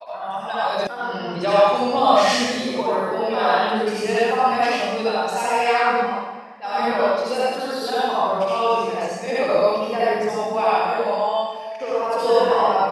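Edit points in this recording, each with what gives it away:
0.87 s: sound stops dead

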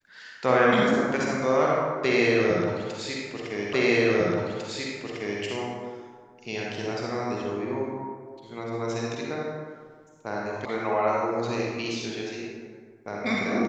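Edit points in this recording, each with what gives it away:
3.73 s: repeat of the last 1.7 s
10.65 s: sound stops dead

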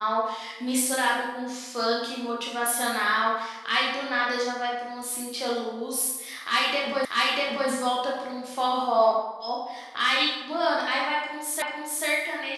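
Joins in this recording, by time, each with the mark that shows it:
7.05 s: repeat of the last 0.64 s
11.62 s: repeat of the last 0.44 s

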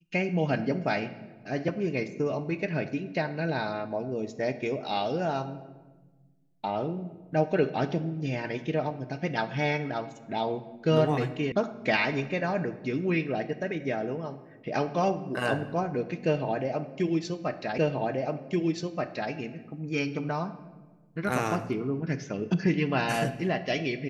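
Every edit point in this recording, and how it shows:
11.52 s: sound stops dead
17.78 s: repeat of the last 1.53 s

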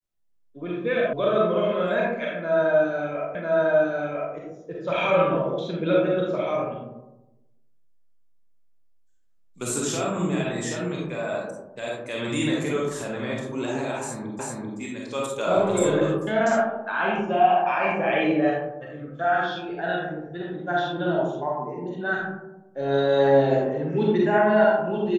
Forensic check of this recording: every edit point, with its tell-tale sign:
1.13 s: sound stops dead
3.35 s: repeat of the last 1 s
14.39 s: repeat of the last 0.39 s

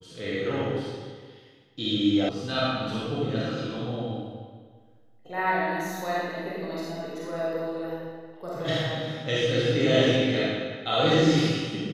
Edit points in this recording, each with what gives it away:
2.29 s: sound stops dead

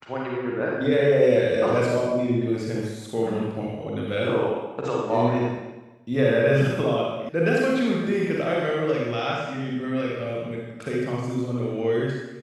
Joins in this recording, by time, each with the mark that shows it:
7.29 s: sound stops dead

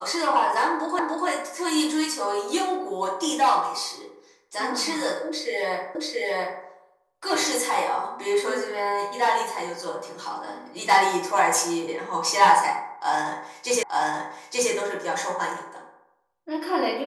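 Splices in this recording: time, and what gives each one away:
0.99 s: repeat of the last 0.29 s
5.95 s: repeat of the last 0.68 s
13.83 s: repeat of the last 0.88 s

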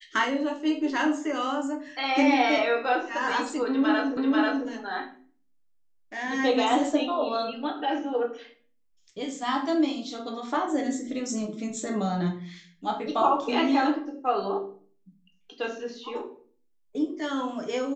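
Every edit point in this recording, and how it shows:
4.17 s: repeat of the last 0.49 s

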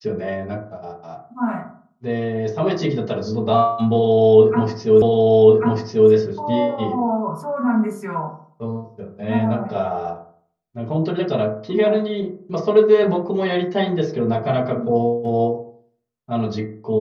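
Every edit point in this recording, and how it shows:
5.02 s: repeat of the last 1.09 s

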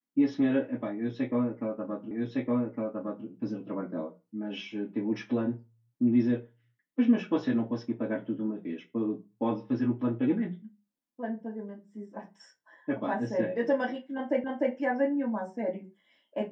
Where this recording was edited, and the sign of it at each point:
2.11 s: repeat of the last 1.16 s
14.44 s: repeat of the last 0.3 s

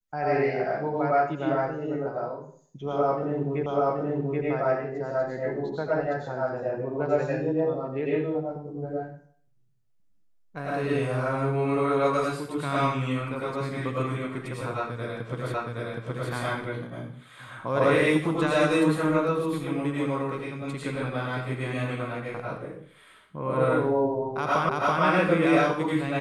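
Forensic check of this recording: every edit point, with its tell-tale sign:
3.66 s: repeat of the last 0.78 s
15.54 s: repeat of the last 0.77 s
24.69 s: repeat of the last 0.33 s

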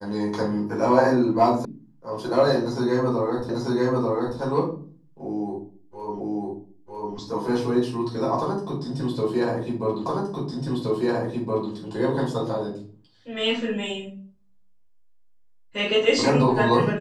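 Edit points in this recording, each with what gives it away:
1.65 s: sound stops dead
3.49 s: repeat of the last 0.89 s
6.20 s: repeat of the last 0.95 s
10.06 s: repeat of the last 1.67 s

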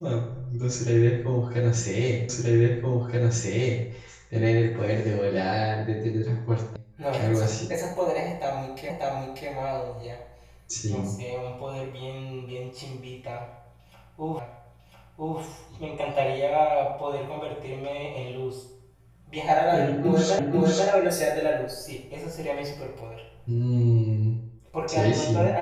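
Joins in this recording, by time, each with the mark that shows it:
2.29 s: repeat of the last 1.58 s
6.76 s: sound stops dead
8.90 s: repeat of the last 0.59 s
14.39 s: repeat of the last 1 s
20.39 s: repeat of the last 0.49 s

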